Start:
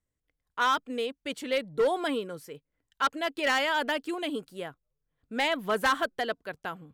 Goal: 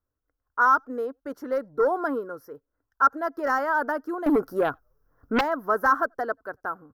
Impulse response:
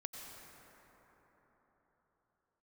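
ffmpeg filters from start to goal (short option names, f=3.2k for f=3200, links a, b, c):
-filter_complex "[0:a]firequalizer=gain_entry='entry(110,0);entry(160,-10);entry(260,1);entry(800,2);entry(1400,8);entry(2400,-26);entry(3500,-27);entry(5500,-5);entry(7900,-23);entry(12000,-2)':delay=0.05:min_phase=1,asettb=1/sr,asplit=3[a][b][c];[a]atrim=end=4.264[d];[b]atrim=start=4.26:end=5.41,asetpts=PTS-STARTPTS,afade=t=in:d=0.004:c=qsin,afade=t=out:st=1.146:d=0.004:c=qsin,aeval=exprs='0.133*sin(PI/2*3.16*val(0)/0.133)':c=same[e];[c]atrim=start=5.406[f];[d][e]acrossfade=d=0.004:c1=hsin:c2=qsin[g];[g][f]acrossfade=d=0.004:c1=qsin:c2=hsin,asplit=2[h][i];[1:a]atrim=start_sample=2205,atrim=end_sample=3969[j];[i][j]afir=irnorm=-1:irlink=0,volume=-13.5dB[k];[h][k]amix=inputs=2:normalize=0"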